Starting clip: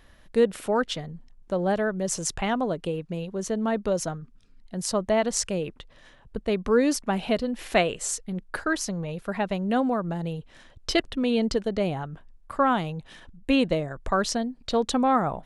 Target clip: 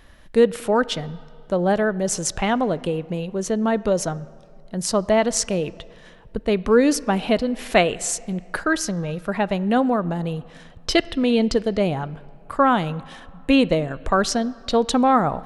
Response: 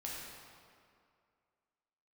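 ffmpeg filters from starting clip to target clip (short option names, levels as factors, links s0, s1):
-filter_complex "[0:a]asplit=2[s0][s1];[1:a]atrim=start_sample=2205,lowpass=4400[s2];[s1][s2]afir=irnorm=-1:irlink=0,volume=0.141[s3];[s0][s3]amix=inputs=2:normalize=0,volume=1.68"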